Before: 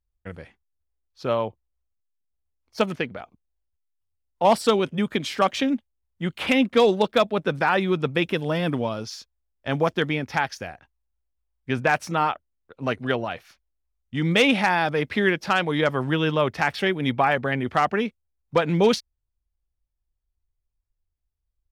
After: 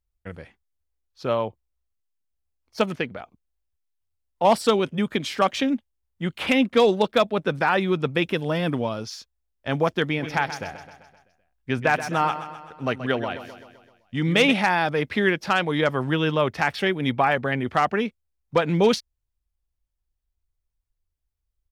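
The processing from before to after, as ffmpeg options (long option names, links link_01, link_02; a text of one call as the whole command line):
ffmpeg -i in.wav -filter_complex "[0:a]asplit=3[link_01][link_02][link_03];[link_01]afade=type=out:start_time=10.17:duration=0.02[link_04];[link_02]aecho=1:1:129|258|387|516|645|774:0.251|0.141|0.0788|0.0441|0.0247|0.0138,afade=type=in:start_time=10.17:duration=0.02,afade=type=out:start_time=14.52:duration=0.02[link_05];[link_03]afade=type=in:start_time=14.52:duration=0.02[link_06];[link_04][link_05][link_06]amix=inputs=3:normalize=0" out.wav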